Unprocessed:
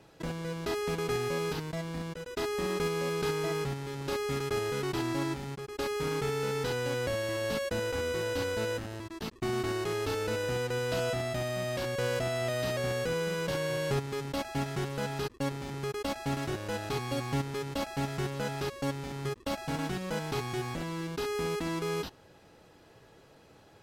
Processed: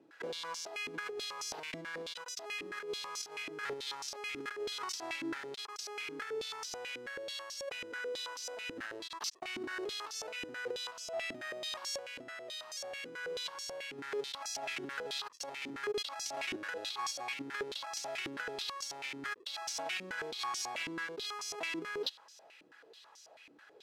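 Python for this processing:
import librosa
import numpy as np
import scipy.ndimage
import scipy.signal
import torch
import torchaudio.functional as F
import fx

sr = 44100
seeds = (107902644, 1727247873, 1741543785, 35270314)

y = fx.tilt_eq(x, sr, slope=4.0)
y = fx.over_compress(y, sr, threshold_db=-35.0, ratio=-0.5)
y = fx.filter_held_bandpass(y, sr, hz=9.2, low_hz=290.0, high_hz=5700.0)
y = y * 10.0 ** (6.0 / 20.0)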